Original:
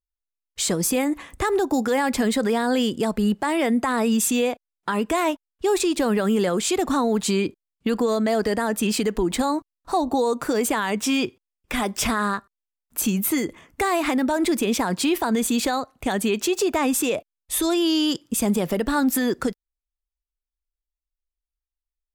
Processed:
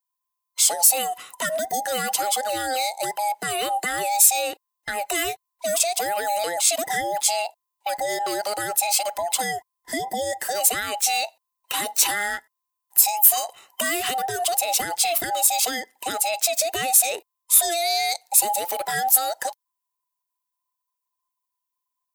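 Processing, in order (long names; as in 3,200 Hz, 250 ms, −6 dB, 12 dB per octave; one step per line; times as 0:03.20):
frequency inversion band by band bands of 1,000 Hz
RIAA equalisation recording
level −3.5 dB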